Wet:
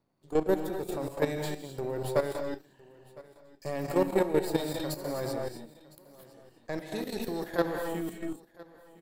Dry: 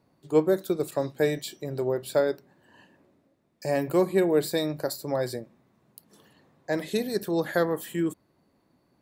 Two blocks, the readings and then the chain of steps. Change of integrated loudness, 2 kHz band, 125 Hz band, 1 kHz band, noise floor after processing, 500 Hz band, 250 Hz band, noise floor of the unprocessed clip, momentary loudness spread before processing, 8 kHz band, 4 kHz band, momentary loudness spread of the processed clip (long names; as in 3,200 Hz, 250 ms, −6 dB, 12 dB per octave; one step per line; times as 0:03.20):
−5.0 dB, −4.5 dB, −3.5 dB, −1.5 dB, −63 dBFS, −5.0 dB, −4.5 dB, −69 dBFS, 10 LU, −4.5 dB, −5.0 dB, 17 LU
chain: gain on one half-wave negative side −7 dB
reverb whose tail is shaped and stops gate 280 ms rising, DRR 2 dB
output level in coarse steps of 11 dB
repeating echo 1,009 ms, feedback 20%, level −21.5 dB